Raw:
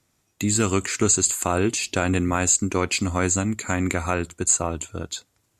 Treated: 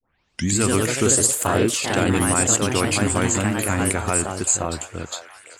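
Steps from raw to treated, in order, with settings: tape start at the beginning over 0.52 s; echoes that change speed 0.152 s, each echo +2 st, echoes 3; delay with a stepping band-pass 0.517 s, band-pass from 700 Hz, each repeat 0.7 oct, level -11.5 dB

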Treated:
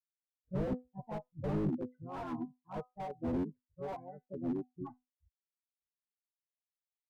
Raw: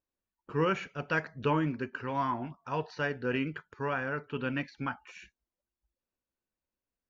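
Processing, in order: per-bin expansion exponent 3; steep low-pass 820 Hz 48 dB/oct; in parallel at +2 dB: limiter -33.5 dBFS, peak gain reduction 11 dB; on the sum: harmoniser +5 st -1 dB; added harmonics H 3 -34 dB, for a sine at -15 dBFS; resonator 250 Hz, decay 0.21 s, harmonics all, mix 60%; slew limiter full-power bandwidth 4.4 Hz; gain +5.5 dB

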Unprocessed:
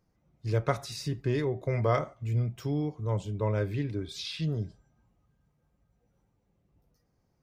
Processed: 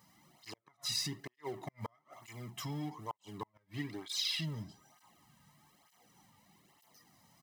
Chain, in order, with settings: G.711 law mismatch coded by mu; flipped gate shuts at -18 dBFS, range -41 dB; compressor 1.5:1, threshold -44 dBFS, peak gain reduction 7.5 dB; HPF 670 Hz 6 dB/oct; comb 1 ms, depth 67%; tape flanging out of phase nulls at 1.1 Hz, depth 3 ms; gain +7 dB

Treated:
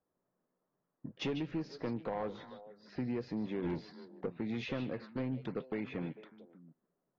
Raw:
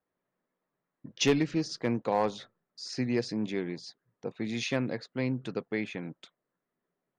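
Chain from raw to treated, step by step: low-pass opened by the level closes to 1500 Hz, open at -27 dBFS; high shelf 2300 Hz -9.5 dB; 3.64–4.26 sample leveller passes 2; compressor 4:1, threshold -34 dBFS, peak gain reduction 12 dB; soft clip -29.5 dBFS, distortion -17 dB; air absorption 170 m; delay with a stepping band-pass 0.149 s, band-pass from 3600 Hz, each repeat -1.4 oct, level -7.5 dB; gain +2 dB; AAC 24 kbps 32000 Hz

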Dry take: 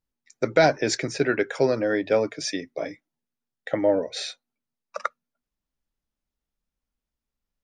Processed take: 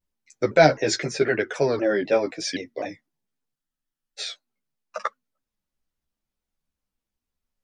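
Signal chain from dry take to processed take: chorus voices 2, 0.75 Hz, delay 12 ms, depth 3.3 ms; spectral freeze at 3.57, 0.62 s; shaped vibrato saw down 3.9 Hz, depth 160 cents; gain +4 dB

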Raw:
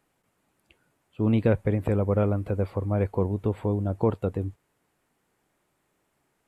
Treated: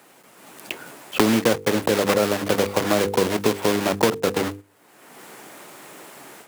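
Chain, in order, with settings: block floating point 3-bit; notches 50/100/150/200/250/300/350/400/450/500 Hz; gate -42 dBFS, range -8 dB; AGC gain up to 10 dB; HPF 230 Hz 12 dB/oct; three-band squash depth 100%; gain -1 dB

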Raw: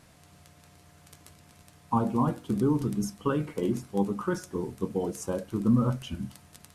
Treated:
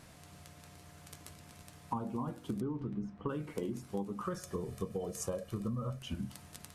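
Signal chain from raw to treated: 2.6–3.28 LPF 3200 Hz -> 1400 Hz 12 dB/oct; 4.24–5.99 comb 1.7 ms, depth 61%; compressor 10:1, threshold -35 dBFS, peak gain reduction 16 dB; gain +1 dB

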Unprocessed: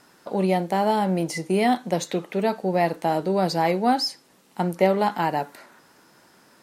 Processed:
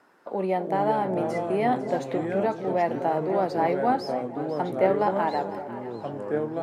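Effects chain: three-band isolator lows -12 dB, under 260 Hz, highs -15 dB, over 2200 Hz; echo with dull and thin repeats by turns 0.25 s, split 810 Hz, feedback 69%, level -10 dB; echoes that change speed 0.249 s, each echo -4 st, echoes 2, each echo -6 dB; gain -2 dB

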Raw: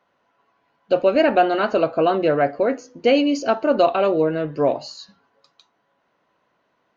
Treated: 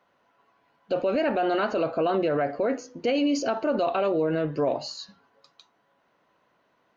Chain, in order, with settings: limiter -17 dBFS, peak gain reduction 11.5 dB

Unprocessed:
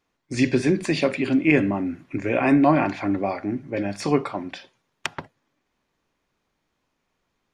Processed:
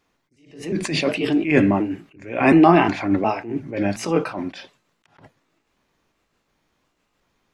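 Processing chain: trilling pitch shifter +2 st, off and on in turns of 0.36 s; attack slew limiter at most 110 dB/s; gain +6 dB

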